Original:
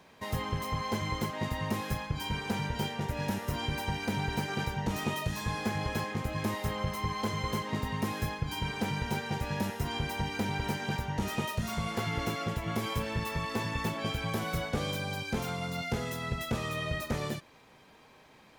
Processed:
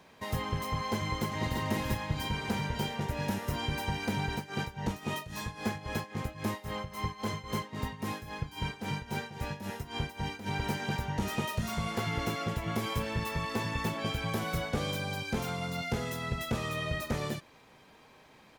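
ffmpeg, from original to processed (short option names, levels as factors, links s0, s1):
-filter_complex "[0:a]asplit=2[s0][s1];[s1]afade=t=in:st=0.97:d=0.01,afade=t=out:st=1.6:d=0.01,aecho=0:1:340|680|1020|1360|1700|2040|2380|2720|3060:0.630957|0.378574|0.227145|0.136287|0.0817721|0.0490632|0.0294379|0.0176628|0.0105977[s2];[s0][s2]amix=inputs=2:normalize=0,asplit=3[s3][s4][s5];[s3]afade=t=out:st=4.26:d=0.02[s6];[s4]tremolo=f=3.7:d=0.81,afade=t=in:st=4.26:d=0.02,afade=t=out:st=10.46:d=0.02[s7];[s5]afade=t=in:st=10.46:d=0.02[s8];[s6][s7][s8]amix=inputs=3:normalize=0"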